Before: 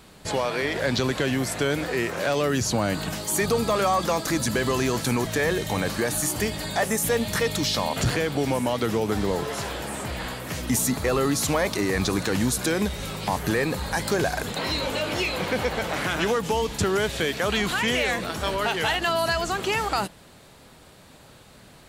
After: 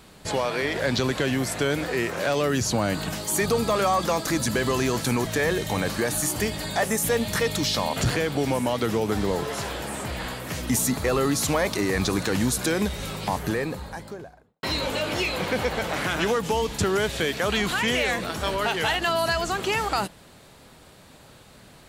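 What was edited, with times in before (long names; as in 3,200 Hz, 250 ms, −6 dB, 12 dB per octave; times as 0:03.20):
0:13.08–0:14.63: fade out and dull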